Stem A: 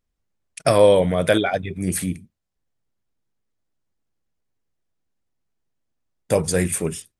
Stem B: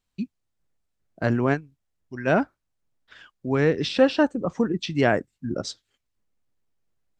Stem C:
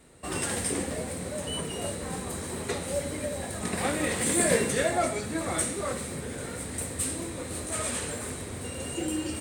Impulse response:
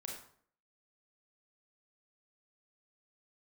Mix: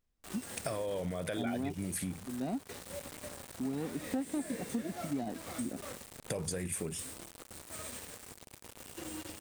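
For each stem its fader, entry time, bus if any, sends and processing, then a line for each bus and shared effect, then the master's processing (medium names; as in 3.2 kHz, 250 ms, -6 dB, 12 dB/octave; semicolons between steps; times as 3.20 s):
-3.0 dB, 0.00 s, no send, peak limiter -14 dBFS, peak gain reduction 10.5 dB; compression, threshold -23 dBFS, peak gain reduction 5.5 dB
-14.5 dB, 0.15 s, no send, median filter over 41 samples; small resonant body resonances 250/730/3800 Hz, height 14 dB, ringing for 30 ms
-14.5 dB, 0.00 s, send -22 dB, bit crusher 5-bit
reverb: on, RT60 0.55 s, pre-delay 27 ms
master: compression 3:1, threshold -35 dBFS, peak gain reduction 12 dB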